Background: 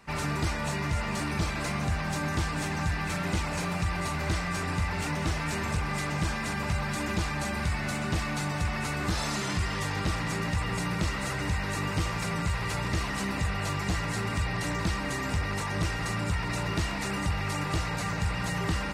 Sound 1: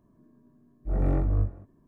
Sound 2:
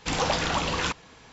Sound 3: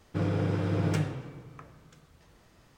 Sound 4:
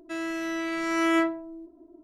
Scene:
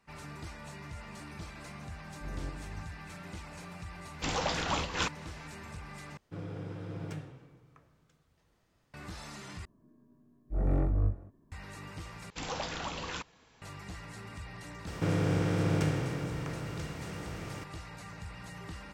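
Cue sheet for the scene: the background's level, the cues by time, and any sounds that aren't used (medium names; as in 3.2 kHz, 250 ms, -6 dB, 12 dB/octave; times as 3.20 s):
background -15 dB
1.35 s: add 1 -13.5 dB + random-step tremolo
4.16 s: add 2 -2.5 dB + random flutter of the level
6.17 s: replace with 3 -12.5 dB
9.65 s: replace with 1 -3.5 dB
12.30 s: replace with 2 -11.5 dB
14.87 s: add 3 -3.5 dB + spectral levelling over time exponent 0.4
not used: 4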